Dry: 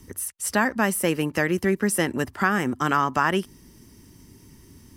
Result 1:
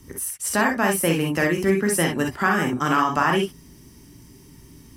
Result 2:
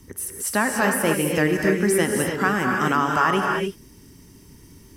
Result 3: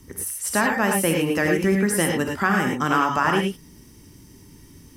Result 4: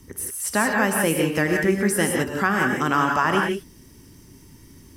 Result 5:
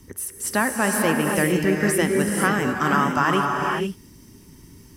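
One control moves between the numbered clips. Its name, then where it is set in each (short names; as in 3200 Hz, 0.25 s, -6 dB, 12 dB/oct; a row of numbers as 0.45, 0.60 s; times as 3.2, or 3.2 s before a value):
non-linear reverb, gate: 80, 320, 130, 200, 520 ms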